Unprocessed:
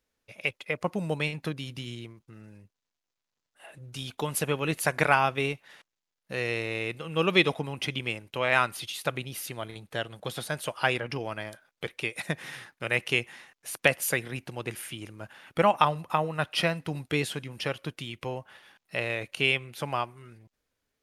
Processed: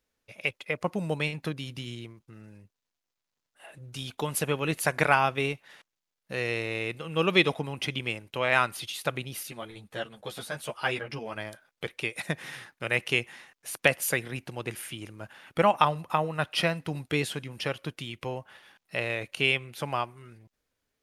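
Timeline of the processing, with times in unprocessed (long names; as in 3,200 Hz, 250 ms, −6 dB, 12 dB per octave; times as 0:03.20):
0:09.43–0:11.36: string-ensemble chorus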